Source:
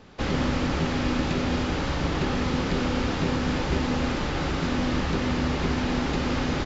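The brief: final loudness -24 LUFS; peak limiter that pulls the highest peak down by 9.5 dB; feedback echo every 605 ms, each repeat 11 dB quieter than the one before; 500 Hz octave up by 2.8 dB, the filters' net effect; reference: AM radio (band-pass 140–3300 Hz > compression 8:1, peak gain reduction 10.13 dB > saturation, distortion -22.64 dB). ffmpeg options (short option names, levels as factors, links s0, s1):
-af "equalizer=f=500:t=o:g=3.5,alimiter=limit=0.0891:level=0:latency=1,highpass=140,lowpass=3300,aecho=1:1:605|1210|1815:0.282|0.0789|0.0221,acompressor=threshold=0.0158:ratio=8,asoftclip=threshold=0.0299,volume=6.68"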